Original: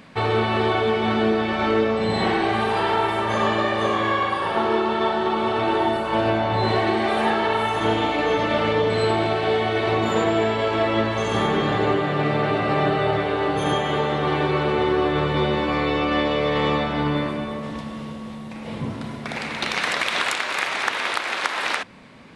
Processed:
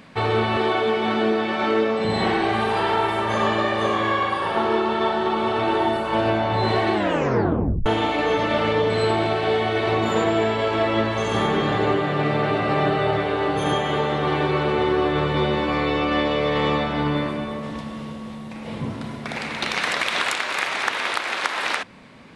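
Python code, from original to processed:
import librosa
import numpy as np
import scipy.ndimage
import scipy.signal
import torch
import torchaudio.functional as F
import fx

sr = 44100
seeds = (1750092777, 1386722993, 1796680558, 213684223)

y = fx.highpass(x, sr, hz=180.0, slope=12, at=(0.57, 2.05))
y = fx.edit(y, sr, fx.tape_stop(start_s=6.93, length_s=0.93), tone=tone)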